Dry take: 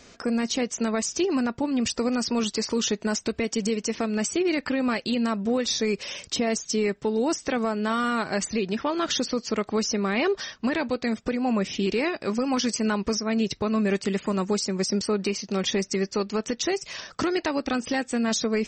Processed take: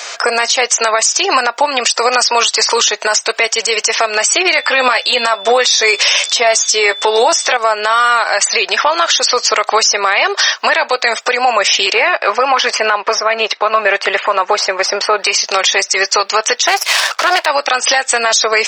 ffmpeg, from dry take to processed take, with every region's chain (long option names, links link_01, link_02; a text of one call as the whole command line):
ffmpeg -i in.wav -filter_complex "[0:a]asettb=1/sr,asplit=3[link_01][link_02][link_03];[link_01]atrim=end=4.554[link_04];[link_02]atrim=start=4.55:end=7.57,asetpts=PTS-STARTPTS,afade=type=in:duration=0.004:curve=qsin,afade=type=out:start_time=3.016:duration=0.004:curve=qsin,acontrast=28,aeval=exprs='val(0)+0.00355*sin(2*PI*3500*n/s)':channel_layout=same,asplit=2[link_05][link_06];[link_06]adelay=12,volume=-8dB[link_07];[link_05][link_07]amix=inputs=2:normalize=0,atrim=end_sample=133182[link_08];[link_03]atrim=start=7.566[link_09];[link_04][link_08]acrossfade=duration=0.004:curve1=hsin:curve2=qsin[link_10];[link_10][link_09]acrossfade=duration=0.004:curve1=qsin:curve2=hsin,asettb=1/sr,asplit=3[link_11][link_12][link_13];[link_11]atrim=end=11.934[link_14];[link_12]atrim=start=11.93:end=15.18,asetpts=PTS-STARTPTS,afade=type=in:duration=0.004:curve=qsin,afade=type=out:start_time=3.246:duration=0.004:curve=qsin,aeval=exprs='if(lt(val(0),0),0.708*val(0),val(0))':channel_layout=same,lowpass=2700[link_15];[link_13]atrim=start=15.176[link_16];[link_14][link_15]acrossfade=duration=0.004:curve1=hsin:curve2=qsin[link_17];[link_17][link_16]acrossfade=duration=0.004:curve1=qsin:curve2=hsin,asettb=1/sr,asplit=3[link_18][link_19][link_20];[link_18]atrim=end=16.674[link_21];[link_19]atrim=start=16.67:end=17.46,asetpts=PTS-STARTPTS,afade=type=in:duration=0.004:curve=qsin,afade=type=out:start_time=0.786:duration=0.004:curve=qsin,lowpass=5100,aeval=exprs='max(val(0),0)':channel_layout=same,acontrast=53[link_22];[link_20]atrim=start=17.456[link_23];[link_21][link_22]acrossfade=duration=0.004:curve1=hsin:curve2=qsin[link_24];[link_24][link_23]acrossfade=duration=0.004:curve1=qsin:curve2=hsin,highpass=frequency=660:width=0.5412,highpass=frequency=660:width=1.3066,acompressor=threshold=-32dB:ratio=6,alimiter=level_in=28dB:limit=-1dB:release=50:level=0:latency=1,volume=-1dB" out.wav